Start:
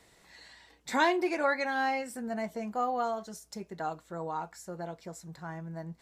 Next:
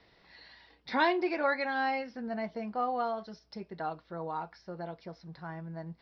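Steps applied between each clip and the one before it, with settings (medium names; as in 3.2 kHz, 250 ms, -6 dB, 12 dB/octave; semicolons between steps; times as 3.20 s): steep low-pass 5.4 kHz 96 dB/octave; trim -1 dB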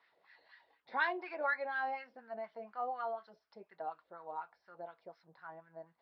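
peaking EQ 3.7 kHz +7.5 dB 1.9 oct; LFO band-pass sine 4.1 Hz 540–1600 Hz; trim -3 dB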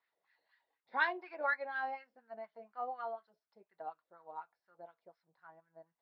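upward expansion 1.5:1, over -59 dBFS; trim +2 dB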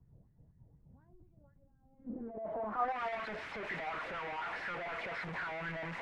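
one-bit delta coder 64 kbps, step -36 dBFS; low-pass sweep 140 Hz -> 2.1 kHz, 1.84–3.01 s; three bands expanded up and down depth 40%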